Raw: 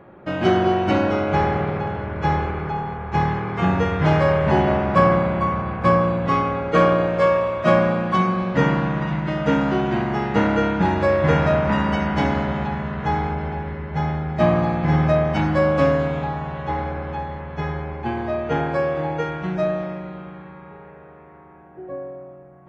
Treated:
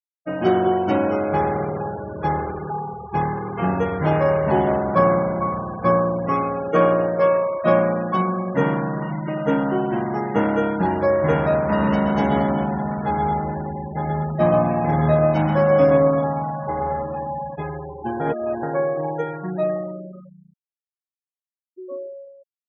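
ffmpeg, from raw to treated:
-filter_complex "[0:a]asettb=1/sr,asplit=3[s0][s1][s2];[s0]atrim=end=11.594[s3];[s1]atrim=start=11.59:end=17.56,asetpts=PTS-STARTPTS,afade=t=in:d=0.004:c=qsin,afade=t=out:st=5.966:d=0.004:c=qsin,aecho=1:1:130|227.5|300.6|355.5|396.6:0.631|0.398|0.251|0.158|0.1,atrim=end_sample=263277[s4];[s2]atrim=start=17.556[s5];[s3][s4]acrossfade=d=0.004:c1=hsin:c2=qsin[s6];[s6][s5]acrossfade=d=0.004:c1=qsin:c2=hsin,asplit=3[s7][s8][s9];[s7]atrim=end=18.202[s10];[s8]atrim=start=18.198:end=18.632,asetpts=PTS-STARTPTS,areverse[s11];[s9]atrim=start=18.628[s12];[s10][s11]acrossfade=d=0.004:c1=hsin:c2=hsin[s13];[s13][s12]acrossfade=d=0.004:c1=hsin:c2=hsin,aemphasis=mode=production:type=bsi,afftfilt=real='re*gte(hypot(re,im),0.0562)':imag='im*gte(hypot(re,im),0.0562)':win_size=1024:overlap=0.75,tiltshelf=f=1400:g=7.5,volume=0.668"

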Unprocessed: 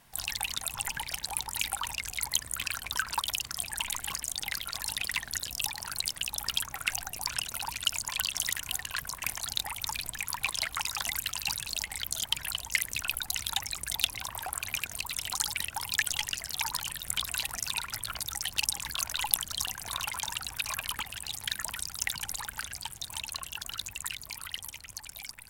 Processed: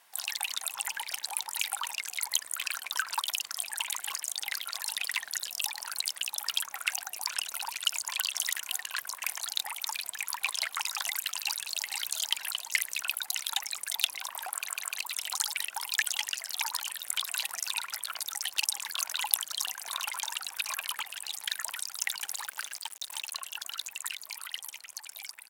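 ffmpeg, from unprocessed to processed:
-filter_complex "[0:a]asplit=2[s0][s1];[s1]afade=t=in:st=11.38:d=0.01,afade=t=out:st=11.9:d=0.01,aecho=0:1:470|940|1410|1880:0.501187|0.150356|0.0451069|0.0135321[s2];[s0][s2]amix=inputs=2:normalize=0,asettb=1/sr,asplit=3[s3][s4][s5];[s3]atrim=end=22.194[s6];[s4]atrim=start=22.19:end=23.32,asetpts=PTS-STARTPTS,afade=t=in:d=0.004:c=qsin,afade=t=out:st=1.126:d=0.004:c=qsin,acrusher=bits=6:mix=0:aa=0.5[s7];[s5]atrim=start=23.316[s8];[s6][s7]acrossfade=d=0.004:c1=hsin:c2=qsin[s9];[s9][s8]acrossfade=d=0.004:c1=qsin:c2=hsin,asplit=4[s10][s11][s12][s13];[s10]atrim=end=14.692[s14];[s11]atrim=start=14.538:end=14.692[s15];[s12]atrim=start=14.538:end=14.692[s16];[s13]atrim=start=14.988[s17];[s14][s15]acrossfade=d=0.004:c1=hsin:c2=hsin[s18];[s18][s16]acrossfade=d=0.004:c1=hsin:c2=hsin[s19];[s19][s17]acrossfade=d=0.004:c1=hsin:c2=hsin,highpass=660"

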